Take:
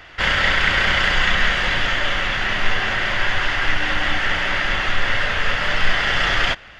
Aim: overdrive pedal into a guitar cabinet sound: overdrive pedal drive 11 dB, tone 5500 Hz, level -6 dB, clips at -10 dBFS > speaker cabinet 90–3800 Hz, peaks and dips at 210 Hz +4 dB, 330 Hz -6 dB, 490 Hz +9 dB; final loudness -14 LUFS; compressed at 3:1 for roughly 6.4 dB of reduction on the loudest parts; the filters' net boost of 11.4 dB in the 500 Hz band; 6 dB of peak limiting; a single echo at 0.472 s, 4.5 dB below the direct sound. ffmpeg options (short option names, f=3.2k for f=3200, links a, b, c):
-filter_complex "[0:a]equalizer=f=500:t=o:g=8.5,acompressor=threshold=-19dB:ratio=3,alimiter=limit=-14.5dB:level=0:latency=1,aecho=1:1:472:0.596,asplit=2[a][b];[b]highpass=f=720:p=1,volume=11dB,asoftclip=type=tanh:threshold=-10dB[c];[a][c]amix=inputs=2:normalize=0,lowpass=f=5.5k:p=1,volume=-6dB,highpass=90,equalizer=f=210:t=q:w=4:g=4,equalizer=f=330:t=q:w=4:g=-6,equalizer=f=490:t=q:w=4:g=9,lowpass=f=3.8k:w=0.5412,lowpass=f=3.8k:w=1.3066,volume=4.5dB"